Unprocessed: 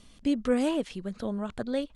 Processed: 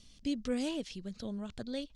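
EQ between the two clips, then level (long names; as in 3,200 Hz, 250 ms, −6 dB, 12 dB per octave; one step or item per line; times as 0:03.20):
drawn EQ curve 100 Hz 0 dB, 1,200 Hz −10 dB, 5,500 Hz +7 dB, 9,200 Hz −3 dB
−3.5 dB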